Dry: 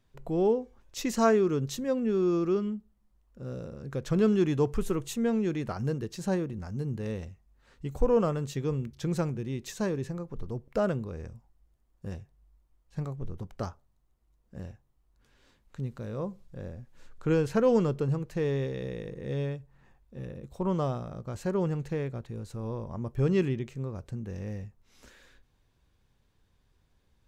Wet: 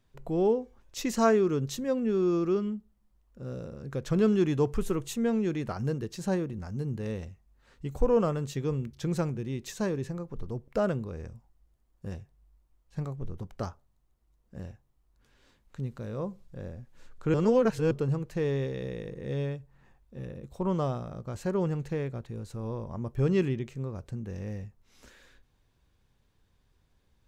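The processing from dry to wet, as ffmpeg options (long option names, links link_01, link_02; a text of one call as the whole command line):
ffmpeg -i in.wav -filter_complex "[0:a]asplit=3[link_01][link_02][link_03];[link_01]atrim=end=17.342[link_04];[link_02]atrim=start=17.338:end=17.912,asetpts=PTS-STARTPTS,areverse[link_05];[link_03]atrim=start=17.908[link_06];[link_04][link_05]acrossfade=duration=0.004:curve1=hsin:curve2=hsin[link_07];[link_07][link_06]acrossfade=duration=0.004:curve1=hsin:curve2=hsin" out.wav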